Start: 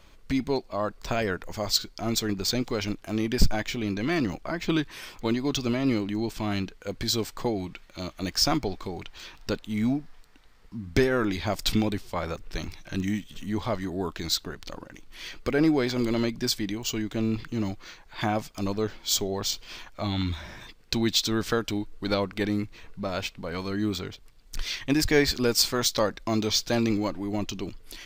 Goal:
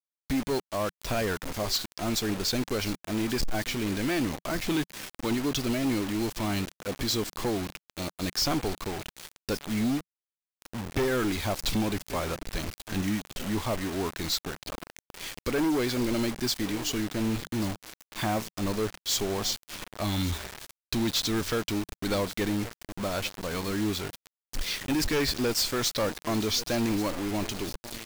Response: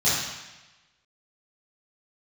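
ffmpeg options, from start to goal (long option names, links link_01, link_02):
-filter_complex "[0:a]asplit=2[link_01][link_02];[link_02]aecho=0:1:1134|2268:0.1|0.031[link_03];[link_01][link_03]amix=inputs=2:normalize=0,acrusher=bits=5:mix=0:aa=0.000001,adynamicequalizer=threshold=0.00708:dfrequency=180:dqfactor=4.3:tfrequency=180:tqfactor=4.3:attack=5:release=100:ratio=0.375:range=2:mode=cutabove:tftype=bell,asoftclip=type=hard:threshold=-23dB"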